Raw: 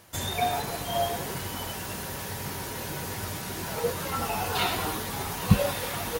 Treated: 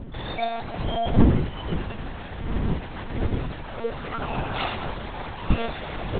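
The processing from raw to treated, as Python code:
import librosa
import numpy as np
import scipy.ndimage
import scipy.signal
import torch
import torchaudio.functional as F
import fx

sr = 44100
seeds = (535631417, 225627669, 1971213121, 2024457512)

y = fx.dmg_wind(x, sr, seeds[0], corner_hz=190.0, level_db=-27.0)
y = fx.air_absorb(y, sr, metres=67.0)
y = fx.lpc_monotone(y, sr, seeds[1], pitch_hz=230.0, order=10)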